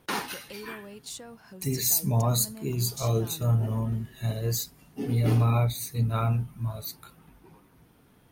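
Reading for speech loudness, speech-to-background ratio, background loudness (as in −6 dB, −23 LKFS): −27.5 LKFS, 15.5 dB, −43.0 LKFS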